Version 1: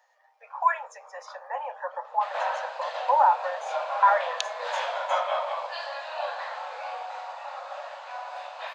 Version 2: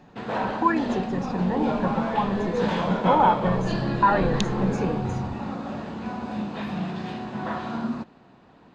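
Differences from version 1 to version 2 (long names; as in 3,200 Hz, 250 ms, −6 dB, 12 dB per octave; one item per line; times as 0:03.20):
background: entry −2.05 s
master: remove Butterworth high-pass 540 Hz 96 dB per octave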